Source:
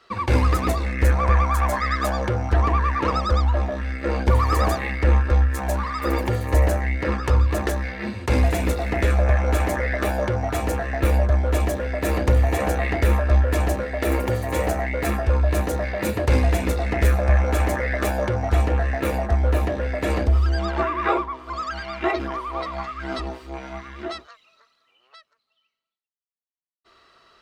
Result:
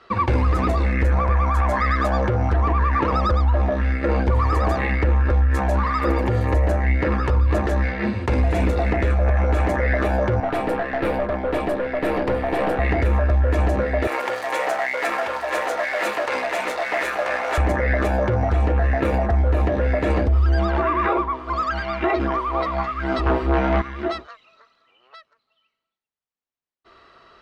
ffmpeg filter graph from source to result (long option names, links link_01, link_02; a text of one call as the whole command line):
ffmpeg -i in.wav -filter_complex "[0:a]asettb=1/sr,asplit=3[link_01][link_02][link_03];[link_01]atrim=end=10.404[link_04];[link_02]atrim=start=10.4:end=12.79,asetpts=PTS-STARTPTS,afade=type=in:duration=0.004:curve=qsin,afade=type=out:start_time=2.386:duration=0.004:curve=qsin,highpass=210,equalizer=frequency=6500:width=3.1:gain=-13.5,aeval=exprs='(tanh(12.6*val(0)+0.4)-tanh(0.4))/12.6':channel_layout=same[link_05];[link_03]atrim=start=12.786[link_06];[link_04][link_05]acrossfade=duration=0.004:curve1=hsin:curve2=qsin[link_07];[link_07][link_06]acrossfade=duration=0.004:curve1=qsin:curve2=hsin,asettb=1/sr,asplit=3[link_08][link_09][link_10];[link_08]atrim=end=14.074[link_11];[link_09]atrim=start=14.07:end=17.58,asetpts=PTS-STARTPTS,afade=type=in:duration=0.004:curve=qsin,afade=type=out:start_time=3.506:duration=0.004:curve=qsin,aeval=exprs='val(0)+0.5*0.0355*sgn(val(0))':channel_layout=same,highpass=830,aecho=1:1:985:0.531,atrim=end_sample=154791[link_12];[link_10]atrim=start=17.576[link_13];[link_11][link_12]acrossfade=duration=0.004:curve1=hsin:curve2=qsin[link_14];[link_14][link_13]acrossfade=duration=0.004:curve1=qsin:curve2=hsin,asettb=1/sr,asplit=3[link_15][link_16][link_17];[link_15]atrim=end=23.264[link_18];[link_16]atrim=start=23.26:end=23.82,asetpts=PTS-STARTPTS,afade=type=in:duration=0.004:curve=qsin,afade=type=out:start_time=0.556:duration=0.004:curve=qsin,equalizer=frequency=7600:width_type=o:width=2.5:gain=-12,aeval=exprs='0.0944*sin(PI/2*2.82*val(0)/0.0944)':channel_layout=same[link_19];[link_17]atrim=start=23.816[link_20];[link_18][link_19]acrossfade=duration=0.004:curve1=hsin:curve2=qsin[link_21];[link_21][link_20]acrossfade=duration=0.004:curve1=qsin:curve2=hsin,aemphasis=mode=reproduction:type=75fm,alimiter=limit=-17.5dB:level=0:latency=1:release=71,volume=6dB" out.wav